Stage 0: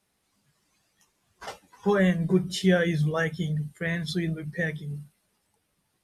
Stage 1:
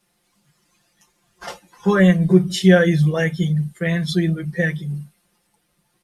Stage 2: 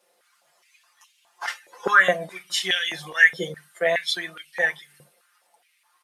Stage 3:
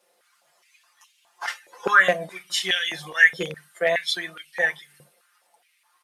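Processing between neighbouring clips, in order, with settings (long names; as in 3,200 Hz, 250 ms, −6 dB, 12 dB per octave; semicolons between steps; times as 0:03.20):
comb filter 5.7 ms, depth 82%; level +4.5 dB
high-pass on a step sequencer 4.8 Hz 510–2,900 Hz
loose part that buzzes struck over −34 dBFS, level −21 dBFS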